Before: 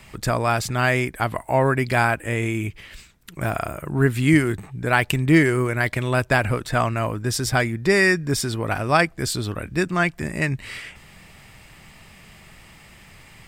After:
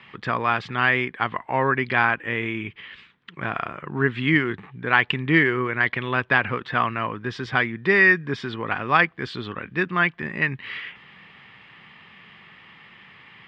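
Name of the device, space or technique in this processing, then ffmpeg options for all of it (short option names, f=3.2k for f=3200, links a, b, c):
kitchen radio: -af "highpass=180,equalizer=f=310:t=q:w=4:g=-4,equalizer=f=630:t=q:w=4:g=-9,equalizer=f=1.1k:t=q:w=4:g=5,equalizer=f=1.8k:t=q:w=4:g=5,equalizer=f=3.2k:t=q:w=4:g=6,lowpass=f=3.4k:w=0.5412,lowpass=f=3.4k:w=1.3066,volume=-1dB"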